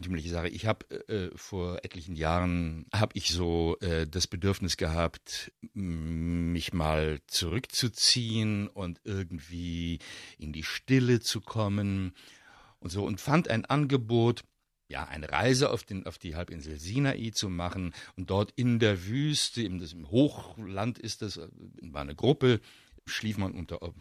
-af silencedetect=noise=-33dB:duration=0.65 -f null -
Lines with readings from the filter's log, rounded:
silence_start: 12.09
silence_end: 12.85 | silence_duration: 0.77